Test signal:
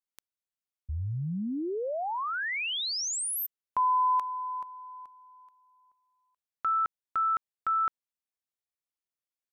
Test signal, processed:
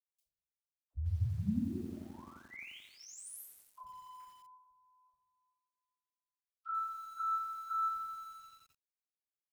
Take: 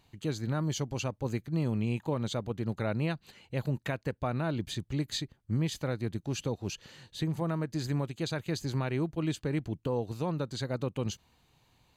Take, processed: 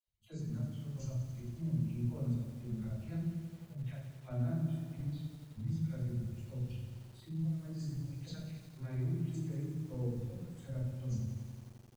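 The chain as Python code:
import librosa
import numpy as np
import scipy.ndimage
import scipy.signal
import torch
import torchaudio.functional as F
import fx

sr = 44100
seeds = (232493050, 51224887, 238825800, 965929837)

y = fx.volume_shaper(x, sr, bpm=106, per_beat=1, depth_db=-10, release_ms=230.0, shape='slow start')
y = scipy.signal.sosfilt(scipy.signal.butter(2, 52.0, 'highpass', fs=sr, output='sos'), y)
y = fx.low_shelf(y, sr, hz=400.0, db=-10.0)
y = fx.hpss(y, sr, part='harmonic', gain_db=8)
y = fx.tone_stack(y, sr, knobs='10-0-1')
y = fx.level_steps(y, sr, step_db=10)
y = fx.env_phaser(y, sr, low_hz=270.0, high_hz=3000.0, full_db=-50.0)
y = fx.dispersion(y, sr, late='lows', ms=68.0, hz=470.0)
y = fx.noise_reduce_blind(y, sr, reduce_db=9)
y = fx.room_shoebox(y, sr, seeds[0], volume_m3=51.0, walls='mixed', distance_m=2.9)
y = fx.echo_crushed(y, sr, ms=87, feedback_pct=80, bits=10, wet_db=-8)
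y = F.gain(torch.from_numpy(y), 1.0).numpy()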